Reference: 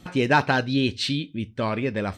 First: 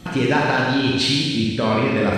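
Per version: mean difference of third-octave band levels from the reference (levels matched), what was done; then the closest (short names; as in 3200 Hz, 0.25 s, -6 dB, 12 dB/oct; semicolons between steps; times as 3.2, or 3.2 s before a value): 8.5 dB: compressor, threshold -26 dBFS, peak gain reduction 12 dB; on a send: thin delay 0.1 s, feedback 69%, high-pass 1800 Hz, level -12.5 dB; on the sum: Schroeder reverb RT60 1.4 s, combs from 32 ms, DRR -2.5 dB; gain +7.5 dB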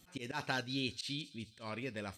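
5.5 dB: pre-emphasis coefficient 0.8; auto swell 0.116 s; thin delay 0.207 s, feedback 54%, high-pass 5100 Hz, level -11 dB; gain -2.5 dB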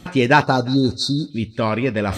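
2.5 dB: spectral delete 0.43–1.31, 1500–3600 Hz; reverse; upward compressor, threshold -25 dBFS; reverse; thinning echo 0.174 s, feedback 46%, high-pass 540 Hz, level -21.5 dB; gain +5.5 dB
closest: third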